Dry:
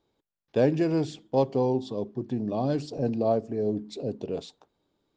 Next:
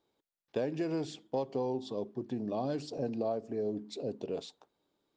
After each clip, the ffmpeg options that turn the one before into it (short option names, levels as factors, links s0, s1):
-af "lowshelf=f=150:g=-11,acompressor=threshold=0.0447:ratio=6,volume=0.75"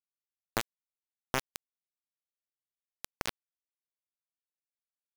-af "acrusher=bits=3:mix=0:aa=0.000001,volume=1.5"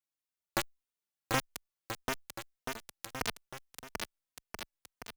-filter_complex "[0:a]aecho=1:1:740|1332|1806|2184|2488:0.631|0.398|0.251|0.158|0.1,asplit=2[s0][s1];[s1]adelay=3.1,afreqshift=-1.7[s2];[s0][s2]amix=inputs=2:normalize=1,volume=1.5"